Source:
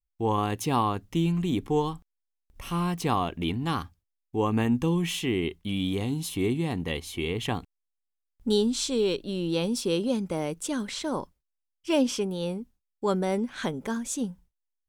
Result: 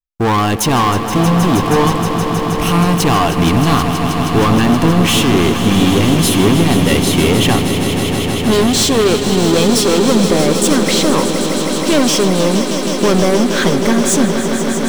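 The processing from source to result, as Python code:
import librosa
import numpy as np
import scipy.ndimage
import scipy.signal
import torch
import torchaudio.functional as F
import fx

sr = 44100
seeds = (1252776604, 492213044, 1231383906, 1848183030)

y = fx.leveller(x, sr, passes=5)
y = fx.echo_swell(y, sr, ms=158, loudest=5, wet_db=-10.5)
y = y * 10.0 ** (2.0 / 20.0)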